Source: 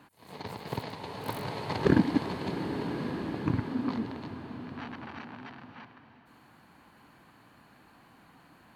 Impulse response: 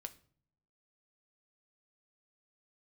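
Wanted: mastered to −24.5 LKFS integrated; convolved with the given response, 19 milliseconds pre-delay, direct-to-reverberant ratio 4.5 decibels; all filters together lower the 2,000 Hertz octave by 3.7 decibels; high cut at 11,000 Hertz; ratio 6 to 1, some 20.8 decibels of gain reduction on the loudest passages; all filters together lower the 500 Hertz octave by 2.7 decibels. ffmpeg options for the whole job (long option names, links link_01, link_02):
-filter_complex "[0:a]lowpass=11000,equalizer=frequency=500:width_type=o:gain=-3.5,equalizer=frequency=2000:width_type=o:gain=-4.5,acompressor=threshold=-42dB:ratio=6,asplit=2[link_01][link_02];[1:a]atrim=start_sample=2205,adelay=19[link_03];[link_02][link_03]afir=irnorm=-1:irlink=0,volume=-0.5dB[link_04];[link_01][link_04]amix=inputs=2:normalize=0,volume=20.5dB"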